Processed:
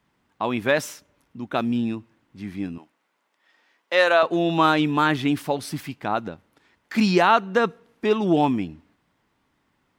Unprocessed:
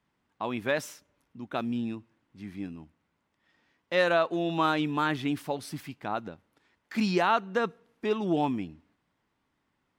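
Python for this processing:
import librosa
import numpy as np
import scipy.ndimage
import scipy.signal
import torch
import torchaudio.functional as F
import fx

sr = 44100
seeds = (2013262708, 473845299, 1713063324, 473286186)

y = fx.highpass(x, sr, hz=460.0, slope=12, at=(2.78, 4.23))
y = y * 10.0 ** (7.5 / 20.0)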